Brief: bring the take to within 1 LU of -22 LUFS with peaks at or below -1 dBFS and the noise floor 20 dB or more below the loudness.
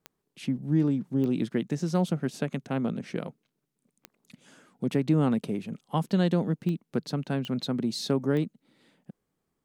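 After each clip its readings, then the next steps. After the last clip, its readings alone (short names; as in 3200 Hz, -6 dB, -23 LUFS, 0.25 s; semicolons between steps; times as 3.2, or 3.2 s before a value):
clicks 6; loudness -29.0 LUFS; peak -13.0 dBFS; loudness target -22.0 LUFS
-> de-click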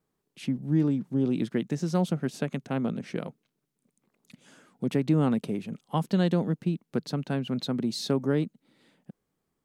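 clicks 0; loudness -29.0 LUFS; peak -13.0 dBFS; loudness target -22.0 LUFS
-> gain +7 dB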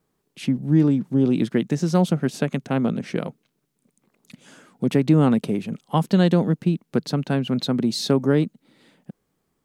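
loudness -22.0 LUFS; peak -6.0 dBFS; noise floor -74 dBFS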